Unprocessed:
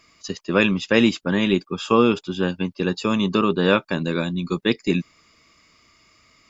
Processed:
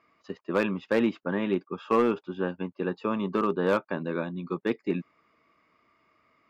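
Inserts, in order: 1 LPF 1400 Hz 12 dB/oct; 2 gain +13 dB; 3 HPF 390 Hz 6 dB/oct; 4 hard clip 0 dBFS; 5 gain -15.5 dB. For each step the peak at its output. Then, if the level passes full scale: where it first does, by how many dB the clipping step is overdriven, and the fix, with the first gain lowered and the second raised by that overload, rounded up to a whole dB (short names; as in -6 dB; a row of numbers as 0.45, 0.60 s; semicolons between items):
-4.0, +9.0, +6.5, 0.0, -15.5 dBFS; step 2, 6.5 dB; step 2 +6 dB, step 5 -8.5 dB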